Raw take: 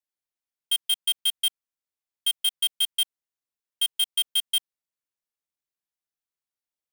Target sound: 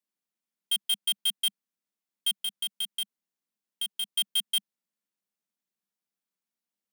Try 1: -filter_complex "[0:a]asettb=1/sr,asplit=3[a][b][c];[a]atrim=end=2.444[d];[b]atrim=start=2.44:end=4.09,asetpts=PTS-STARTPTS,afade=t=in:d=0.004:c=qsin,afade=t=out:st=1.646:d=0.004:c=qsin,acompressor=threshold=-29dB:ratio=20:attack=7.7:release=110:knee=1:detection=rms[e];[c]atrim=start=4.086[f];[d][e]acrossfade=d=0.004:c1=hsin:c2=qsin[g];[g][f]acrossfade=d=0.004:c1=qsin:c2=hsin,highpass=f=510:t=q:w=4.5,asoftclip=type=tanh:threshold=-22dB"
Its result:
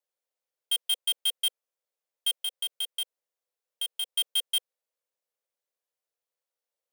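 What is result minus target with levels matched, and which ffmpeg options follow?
250 Hz band -11.5 dB
-filter_complex "[0:a]asettb=1/sr,asplit=3[a][b][c];[a]atrim=end=2.444[d];[b]atrim=start=2.44:end=4.09,asetpts=PTS-STARTPTS,afade=t=in:d=0.004:c=qsin,afade=t=out:st=1.646:d=0.004:c=qsin,acompressor=threshold=-29dB:ratio=20:attack=7.7:release=110:knee=1:detection=rms[e];[c]atrim=start=4.086[f];[d][e]acrossfade=d=0.004:c1=hsin:c2=qsin[g];[g][f]acrossfade=d=0.004:c1=qsin:c2=hsin,highpass=f=200:t=q:w=4.5,asoftclip=type=tanh:threshold=-22dB"

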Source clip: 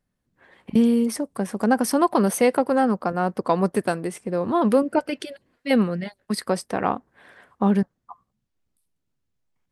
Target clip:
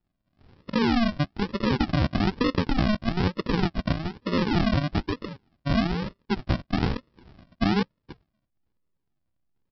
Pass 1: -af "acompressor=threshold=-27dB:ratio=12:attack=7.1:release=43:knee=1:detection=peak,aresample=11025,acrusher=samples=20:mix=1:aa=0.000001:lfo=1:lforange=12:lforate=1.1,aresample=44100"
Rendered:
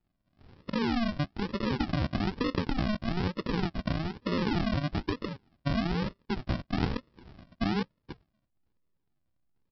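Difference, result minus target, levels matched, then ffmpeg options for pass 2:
compressor: peak gain reduction +6.5 dB
-af "acompressor=threshold=-20dB:ratio=12:attack=7.1:release=43:knee=1:detection=peak,aresample=11025,acrusher=samples=20:mix=1:aa=0.000001:lfo=1:lforange=12:lforate=1.1,aresample=44100"

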